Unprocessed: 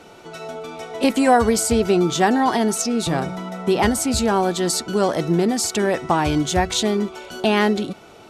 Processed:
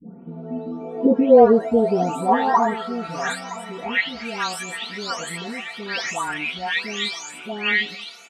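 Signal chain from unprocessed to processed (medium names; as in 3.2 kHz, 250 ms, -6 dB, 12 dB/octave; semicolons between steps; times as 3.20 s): delay that grows with frequency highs late, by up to 576 ms; peaking EQ 160 Hz +7 dB 1.7 oct; comb 4.3 ms, depth 75%; in parallel at -3 dB: peak limiter -11 dBFS, peak gain reduction 10 dB; on the sum: band-pass sweep 210 Hz -> 2.3 kHz, 0.18–3.79 s; delay 968 ms -18 dB; trim +3 dB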